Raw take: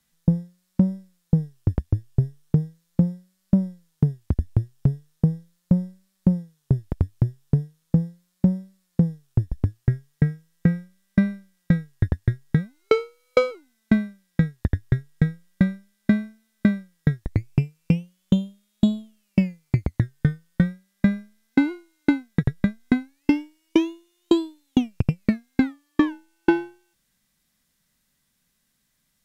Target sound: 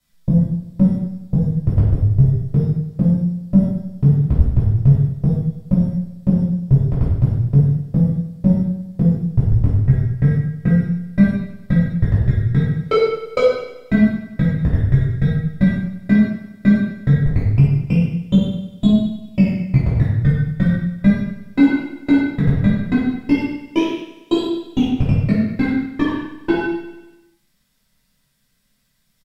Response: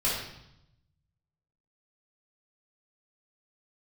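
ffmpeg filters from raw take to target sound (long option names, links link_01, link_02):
-filter_complex "[0:a]aecho=1:1:97|194|291|388|485|582:0.237|0.133|0.0744|0.0416|0.0233|0.0131[link_01];[1:a]atrim=start_sample=2205,afade=type=out:start_time=0.32:duration=0.01,atrim=end_sample=14553[link_02];[link_01][link_02]afir=irnorm=-1:irlink=0,volume=-5dB"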